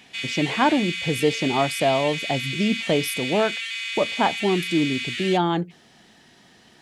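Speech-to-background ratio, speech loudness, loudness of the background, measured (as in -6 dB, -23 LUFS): 4.0 dB, -24.0 LUFS, -28.0 LUFS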